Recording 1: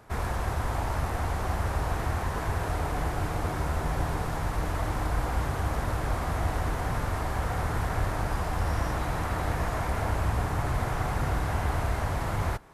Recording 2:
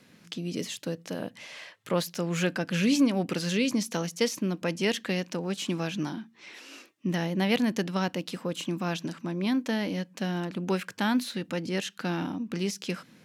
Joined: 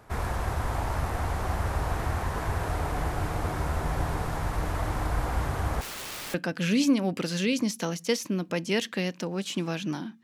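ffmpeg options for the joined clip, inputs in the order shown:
-filter_complex "[0:a]asettb=1/sr,asplit=3[s0][s1][s2];[s0]atrim=end=5.814[s3];[s1]atrim=start=5.81:end=6.34,asetpts=PTS-STARTPTS,afade=t=in:d=0.004:c=qsin,afade=t=out:st=0.526:d=0.004:c=qsin,aeval=exprs='(mod(44.7*val(0)+1,2)-1)/44.7':c=same[s4];[s2]atrim=start=6.336[s5];[s3][s4]acrossfade=d=0.004:c1=hsin:c2=qsin[s6];[s6][s5]acrossfade=d=0.004:c1=qsin:c2=hsin,apad=whole_dur=10.23,atrim=end=10.23,atrim=end=6.342[s7];[1:a]atrim=start=2.458:end=6.35[s8];[s7][s8]acrossfade=d=0.004:c1=hsin:c2=hsin"

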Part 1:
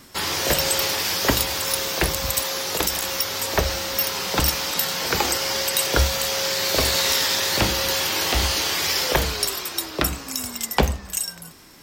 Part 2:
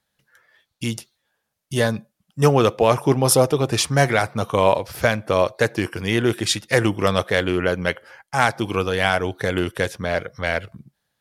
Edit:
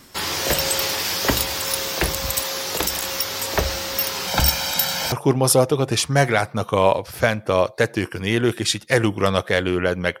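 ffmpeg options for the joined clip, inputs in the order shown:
-filter_complex "[0:a]asettb=1/sr,asplit=3[s0][s1][s2];[s0]atrim=end=4.274[s3];[s1]atrim=start=4.27:end=5.12,asetpts=PTS-STARTPTS,afade=t=in:d=0.004:c=qsin,afade=t=out:st=0.846:d=0.004:c=qsin,aecho=1:1:1.3:0.66,atrim=end_sample=37485[s4];[s2]atrim=start=5.116[s5];[s3][s4]acrossfade=d=0.004:c1=hsin:c2=qsin[s6];[s6][s5]acrossfade=d=0.004:c1=qsin:c2=hsin,apad=whole_dur=10.2,atrim=end=10.2,atrim=end=5.122[s7];[1:a]atrim=start=2.928:end=8.01[s8];[s7][s8]acrossfade=d=0.004:c1=hsin:c2=hsin"

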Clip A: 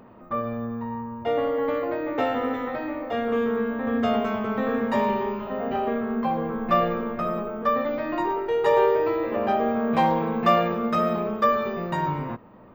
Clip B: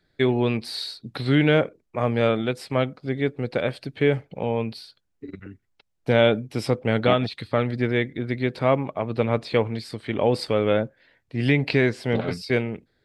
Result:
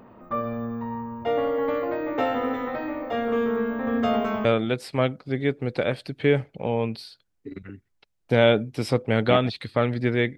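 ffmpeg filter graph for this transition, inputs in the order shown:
-filter_complex "[0:a]apad=whole_dur=10.37,atrim=end=10.37,atrim=end=4.452[s0];[1:a]atrim=start=2.218:end=8.14[s1];[s0][s1]acrossfade=d=0.004:c1=hsin:c2=hsin"

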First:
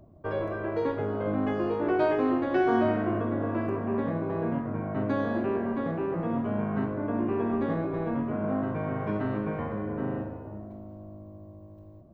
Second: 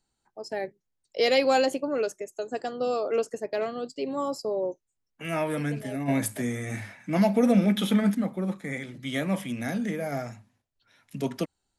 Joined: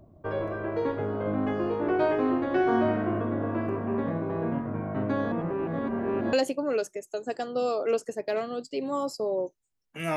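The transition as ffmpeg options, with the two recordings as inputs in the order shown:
-filter_complex "[0:a]apad=whole_dur=10.16,atrim=end=10.16,asplit=2[s0][s1];[s0]atrim=end=5.322[s2];[s1]atrim=start=5.318:end=6.332,asetpts=PTS-STARTPTS,areverse[s3];[1:a]atrim=start=1.578:end=5.41[s4];[s2][s3]acrossfade=d=0.004:c1=hsin:c2=hsin[s5];[s5][s4]acrossfade=d=0.004:c1=hsin:c2=hsin"

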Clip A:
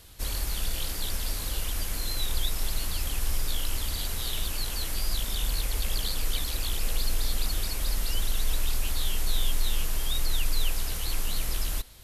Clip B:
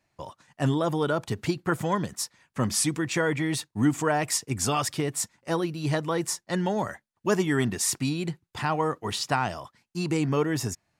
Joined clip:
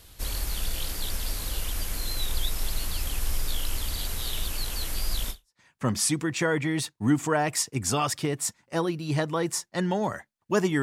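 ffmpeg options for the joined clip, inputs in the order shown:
-filter_complex "[0:a]apad=whole_dur=10.82,atrim=end=10.82,atrim=end=5.6,asetpts=PTS-STARTPTS[s0];[1:a]atrim=start=2.05:end=7.57,asetpts=PTS-STARTPTS[s1];[s0][s1]acrossfade=d=0.3:c1=exp:c2=exp"

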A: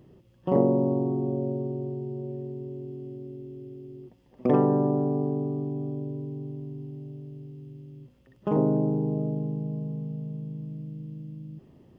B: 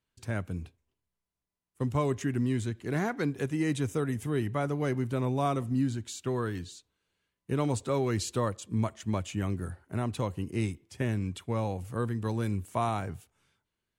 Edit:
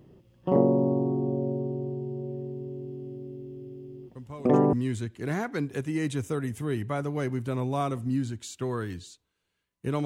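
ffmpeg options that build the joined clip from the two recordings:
-filter_complex "[1:a]asplit=2[s0][s1];[0:a]apad=whole_dur=10.05,atrim=end=10.05,atrim=end=4.732[s2];[s1]atrim=start=2.378:end=7.7[s3];[s0]atrim=start=1.8:end=2.38,asetpts=PTS-STARTPTS,volume=0.224,afade=t=in:d=0.004:c=hsin,afade=t=out:st=0.576:d=0.004:c=hsin,adelay=4150[s4];[s2][s3]acrossfade=d=0.004:c1=hsin:c2=hsin[s5];[s5][s4]amix=inputs=2:normalize=0"

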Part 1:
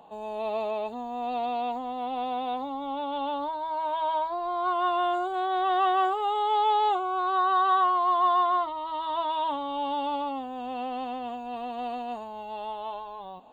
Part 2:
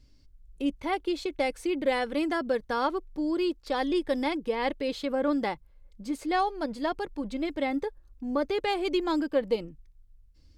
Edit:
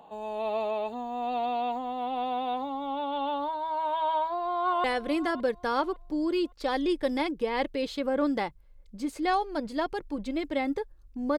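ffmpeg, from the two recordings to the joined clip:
-filter_complex "[0:a]apad=whole_dur=11.38,atrim=end=11.38,atrim=end=4.842[s0];[1:a]atrim=start=1.898:end=8.44[s1];[s0][s1]acrossfade=d=0.004:c1=hsin:c2=hsin,asplit=2[s2][s3];[s3]afade=t=in:st=4.15:d=0.01,afade=t=out:st=4.84:d=0.01,aecho=0:1:560|1120|1680:0.149624|0.0523682|0.0183289[s4];[s2][s4]amix=inputs=2:normalize=0"

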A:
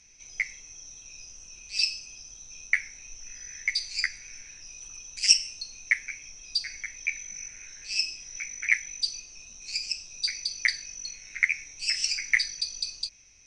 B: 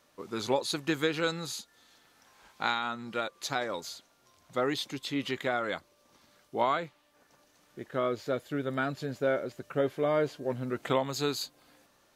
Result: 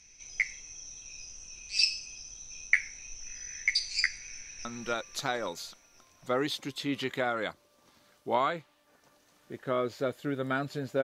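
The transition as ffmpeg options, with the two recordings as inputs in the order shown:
-filter_complex "[0:a]apad=whole_dur=11.03,atrim=end=11.03,atrim=end=4.652[s0];[1:a]atrim=start=2.918:end=9.3[s1];[s0][s1]acrossfade=d=0.004:c1=hsin:c2=hsin,asplit=2[s2][s3];[s3]afade=t=in:st=4.31:d=0.01,afade=t=out:st=4.65:d=0.01,aecho=0:1:270|540|810|1080|1350|1620|1890|2160|2430|2700|2970:0.794328|0.516313|0.335604|0.218142|0.141793|0.0921652|0.0599074|0.0389398|0.0253109|0.0164521|0.0106938[s4];[s2][s4]amix=inputs=2:normalize=0"

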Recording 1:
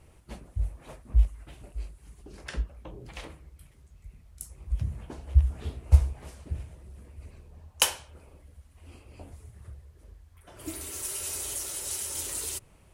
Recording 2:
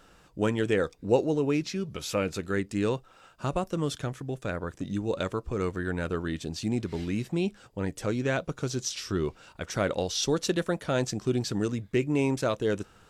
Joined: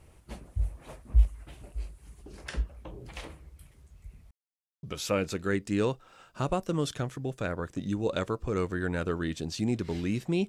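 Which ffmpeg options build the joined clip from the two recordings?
-filter_complex "[0:a]apad=whole_dur=10.48,atrim=end=10.48,asplit=2[s0][s1];[s0]atrim=end=4.31,asetpts=PTS-STARTPTS,afade=t=out:st=4.306:d=0.004:c=hsin[s2];[s1]atrim=start=4.31:end=4.83,asetpts=PTS-STARTPTS,volume=0[s3];[1:a]atrim=start=1.87:end=7.52,asetpts=PTS-STARTPTS,afade=t=in:d=0.004:c=hsin[s4];[s2][s3][s4]concat=n=3:v=0:a=1"

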